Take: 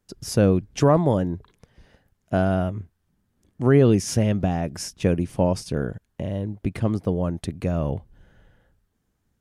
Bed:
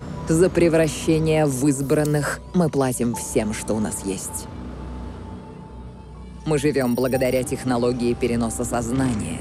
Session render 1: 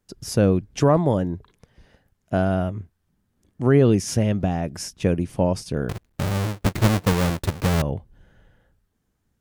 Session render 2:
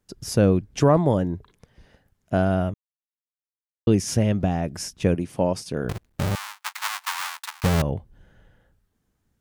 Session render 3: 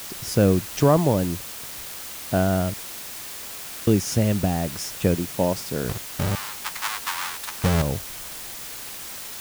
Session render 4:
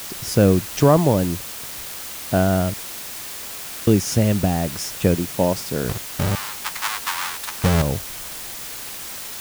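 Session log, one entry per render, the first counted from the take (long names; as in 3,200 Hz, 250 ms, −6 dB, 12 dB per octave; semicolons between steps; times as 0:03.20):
0:05.89–0:07.82: each half-wave held at its own peak
0:02.74–0:03.87: silence; 0:05.15–0:05.85: high-pass filter 190 Hz 6 dB per octave; 0:06.35–0:07.64: Butterworth high-pass 880 Hz 48 dB per octave
bit-depth reduction 6 bits, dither triangular
level +3 dB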